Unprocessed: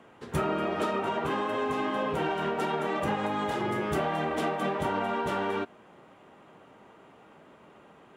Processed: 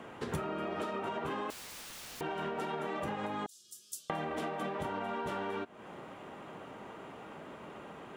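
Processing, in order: 3.46–4.1 inverse Chebyshev high-pass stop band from 2200 Hz, stop band 50 dB; compressor 16:1, threshold -40 dBFS, peak gain reduction 16.5 dB; 1.5–2.21 wrapped overs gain 49 dB; gain +6.5 dB

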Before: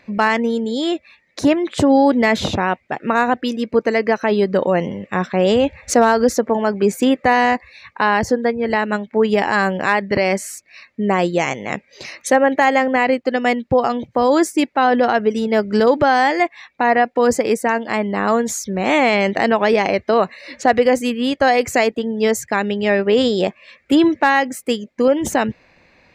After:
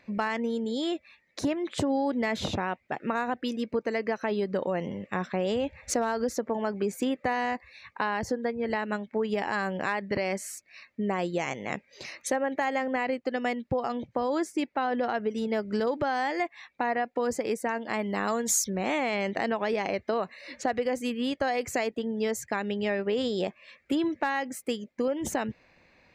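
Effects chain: 13.92–15.38 high shelf 9600 Hz -10.5 dB; compressor 3:1, threshold -18 dBFS, peak gain reduction 7.5 dB; 17.99–18.7 high shelf 3700 Hz +11 dB; gain -8 dB

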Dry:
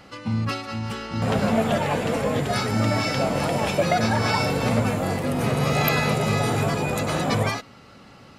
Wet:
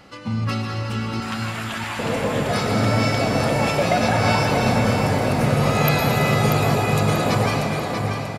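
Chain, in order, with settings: 1.2–1.99 HPF 1100 Hz 24 dB/oct; feedback echo 0.638 s, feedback 39%, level -7 dB; reverb RT60 4.0 s, pre-delay 0.103 s, DRR 1.5 dB

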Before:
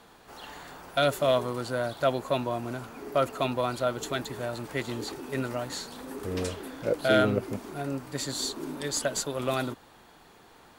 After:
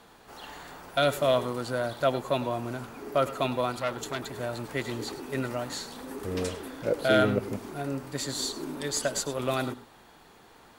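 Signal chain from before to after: reverb, pre-delay 92 ms, DRR 12.5 dB; 3.72–4.35 core saturation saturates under 1500 Hz

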